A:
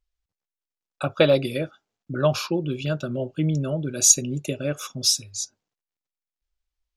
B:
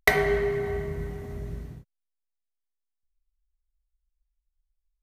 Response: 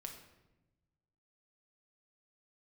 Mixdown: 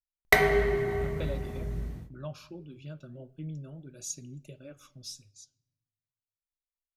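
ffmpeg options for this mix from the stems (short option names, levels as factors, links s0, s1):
-filter_complex "[0:a]agate=range=0.355:threshold=0.0141:ratio=16:detection=peak,bass=f=250:g=6,treble=f=4000:g=-1,flanger=delay=0.9:depth=6.8:regen=-62:speed=0.47:shape=sinusoidal,volume=0.2,asplit=2[s0][s1];[s1]volume=0.282[s2];[1:a]adelay=250,volume=1.33,asplit=2[s3][s4];[s4]volume=0.531[s5];[2:a]atrim=start_sample=2205[s6];[s2][s5]amix=inputs=2:normalize=0[s7];[s7][s6]afir=irnorm=-1:irlink=0[s8];[s0][s3][s8]amix=inputs=3:normalize=0,flanger=delay=3.5:depth=4.5:regen=-84:speed=1.5:shape=sinusoidal"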